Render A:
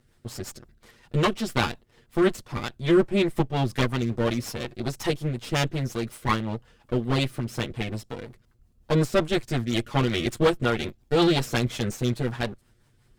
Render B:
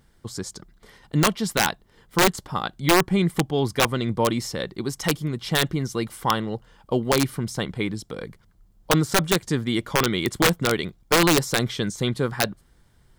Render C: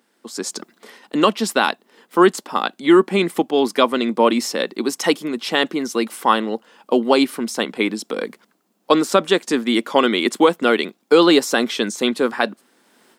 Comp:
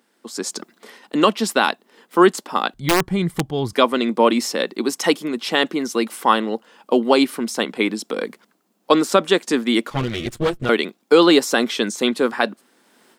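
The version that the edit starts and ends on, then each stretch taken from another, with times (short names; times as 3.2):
C
2.74–3.73 from B
9.9–10.69 from A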